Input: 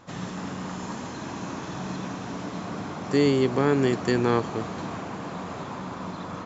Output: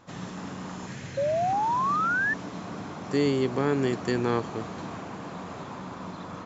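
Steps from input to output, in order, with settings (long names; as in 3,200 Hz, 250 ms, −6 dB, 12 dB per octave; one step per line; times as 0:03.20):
0:00.87–0:01.53: octave-band graphic EQ 125/250/1,000/2,000 Hz +10/−7/−11/+8 dB
0:01.17–0:02.34: sound drawn into the spectrogram rise 540–1,800 Hz −22 dBFS
level −3.5 dB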